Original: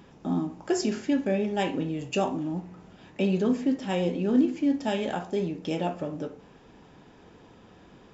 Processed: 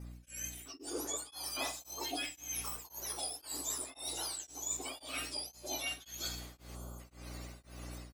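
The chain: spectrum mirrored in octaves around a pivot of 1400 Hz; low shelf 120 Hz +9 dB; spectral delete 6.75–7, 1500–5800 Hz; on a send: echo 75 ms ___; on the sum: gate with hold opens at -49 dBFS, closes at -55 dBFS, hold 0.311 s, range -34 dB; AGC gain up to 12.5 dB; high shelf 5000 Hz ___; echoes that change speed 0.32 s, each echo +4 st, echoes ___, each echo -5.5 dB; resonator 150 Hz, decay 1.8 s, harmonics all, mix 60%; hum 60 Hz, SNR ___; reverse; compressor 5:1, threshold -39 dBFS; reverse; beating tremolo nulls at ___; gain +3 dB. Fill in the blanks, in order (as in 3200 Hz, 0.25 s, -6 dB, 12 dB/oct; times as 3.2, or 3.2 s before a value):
-21 dB, -2.5 dB, 2, 18 dB, 1.9 Hz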